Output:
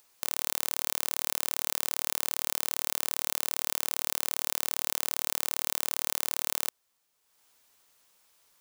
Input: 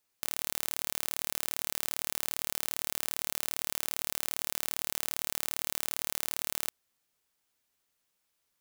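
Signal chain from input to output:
graphic EQ with 10 bands 500 Hz +4 dB, 1,000 Hz +6 dB, 16,000 Hz −3 dB
upward compression, threshold −59 dBFS
high-shelf EQ 2,500 Hz +7.5 dB
level −2 dB

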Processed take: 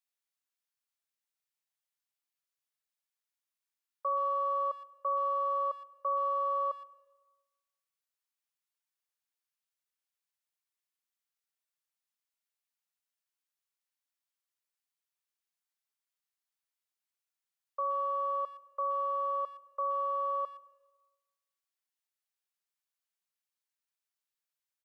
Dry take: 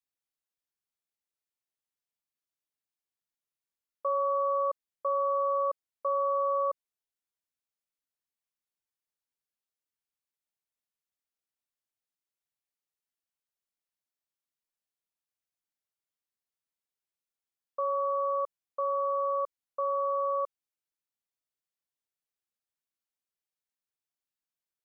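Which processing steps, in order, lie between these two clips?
high-pass filter 850 Hz 12 dB per octave
far-end echo of a speakerphone 120 ms, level −23 dB
dense smooth reverb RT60 1.2 s, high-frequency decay 0.75×, pre-delay 90 ms, DRR 20 dB
level +1 dB

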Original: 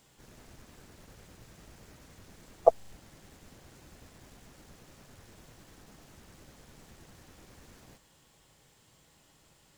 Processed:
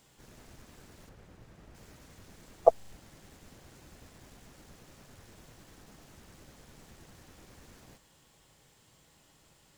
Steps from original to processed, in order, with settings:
0:01.09–0:01.75: high-shelf EQ 3,200 Hz −11.5 dB

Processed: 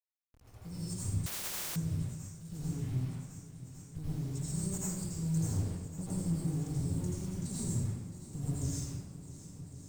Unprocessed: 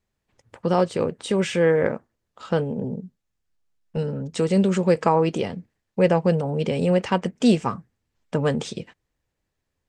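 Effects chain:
low-pass that shuts in the quiet parts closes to 2,900 Hz, open at −14 dBFS
inverse Chebyshev band-stop filter 300–2,700 Hz, stop band 60 dB
0:05.35–0:06.04: leveller curve on the samples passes 2
0:06.82–0:07.56: thirty-one-band graphic EQ 100 Hz +5 dB, 200 Hz +3 dB, 400 Hz +7 dB, 5,000 Hz −7 dB, 8,000 Hz −9 dB
bit reduction 11 bits
asymmetric clip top −49 dBFS
feedback echo with a long and a short gap by turns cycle 1,106 ms, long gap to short 1.5 to 1, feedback 63%, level −15 dB
convolution reverb RT60 1.1 s, pre-delay 76 ms, DRR −8.5 dB
0:01.26–0:01.76: every bin compressed towards the loudest bin 10 to 1
level +5 dB

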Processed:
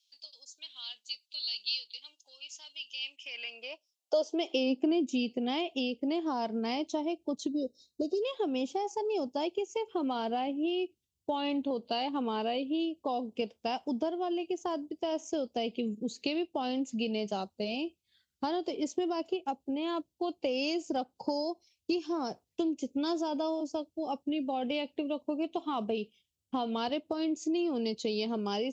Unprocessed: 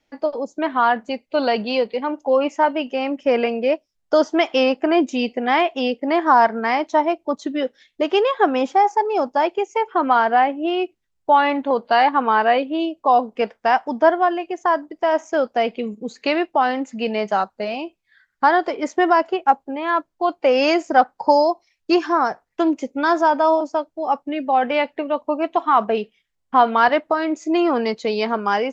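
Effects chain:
high-shelf EQ 4,500 Hz +5.5 dB
gain on a spectral selection 0:07.48–0:08.22, 760–3,700 Hz −27 dB
drawn EQ curve 360 Hz 0 dB, 1,800 Hz −22 dB, 2,800 Hz 0 dB
downward compressor 6 to 1, threshold −25 dBFS, peak gain reduction 12.5 dB
high-pass filter sweep 3,900 Hz → 74 Hz, 0:02.90–0:05.60
level −4 dB

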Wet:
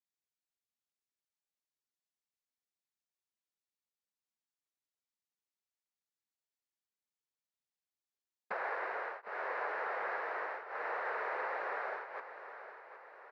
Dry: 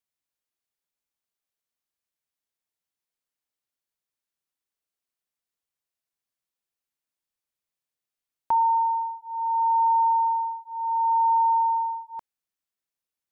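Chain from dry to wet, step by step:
downward compressor, threshold −29 dBFS, peak gain reduction 9.5 dB
cochlear-implant simulation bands 6
on a send: repeating echo 761 ms, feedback 52%, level −12 dB
on the sum: level −8 dB

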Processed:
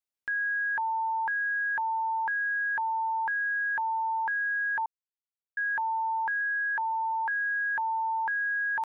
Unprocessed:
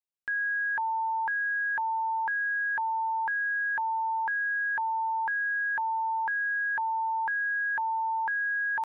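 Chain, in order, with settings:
0:04.86–0:05.57: silence
0:06.41–0:07.31: Bessel high-pass filter 270 Hz, order 8

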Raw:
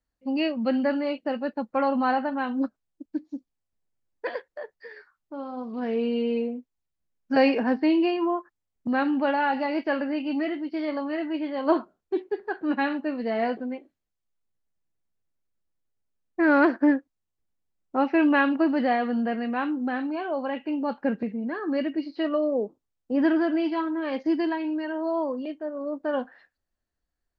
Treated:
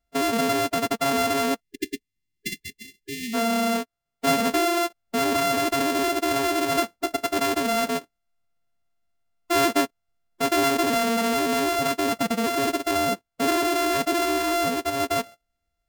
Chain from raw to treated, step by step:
samples sorted by size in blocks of 64 samples
phase-vocoder stretch with locked phases 0.58×
in parallel at +1 dB: compressor whose output falls as the input rises −29 dBFS, ratio −1
on the sum: time-frequency box erased 0:01.61–0:03.34, 410–1,700 Hz
level −2 dB

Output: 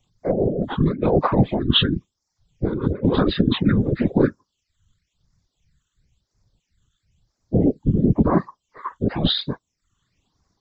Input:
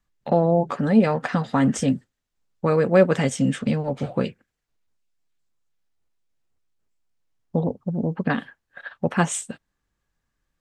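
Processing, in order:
partials spread apart or drawn together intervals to 77%
high-shelf EQ 3,100 Hz +9 dB
compressor whose output falls as the input rises −25 dBFS, ratio −1
random phases in short frames
reverb reduction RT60 0.5 s
all-pass phaser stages 8, 0.98 Hz, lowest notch 660–3,000 Hz
level +8 dB

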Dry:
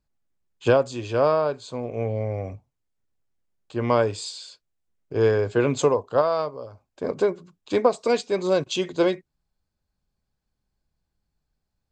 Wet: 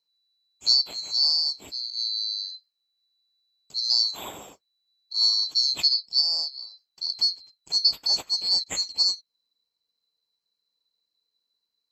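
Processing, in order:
neighbouring bands swapped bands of 4,000 Hz
high-pass filter 42 Hz
level −2.5 dB

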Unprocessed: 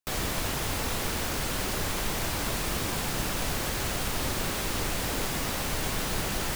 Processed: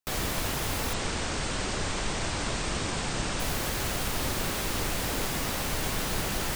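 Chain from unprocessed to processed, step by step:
0:00.93–0:03.40: linear-phase brick-wall low-pass 9,100 Hz

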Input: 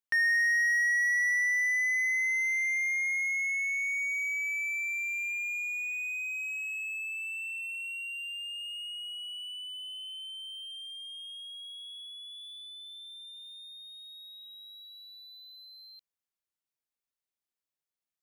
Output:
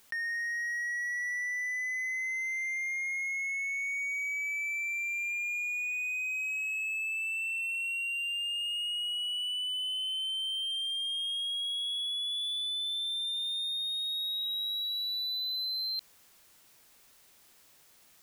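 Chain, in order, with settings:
envelope flattener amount 100%
level −8.5 dB

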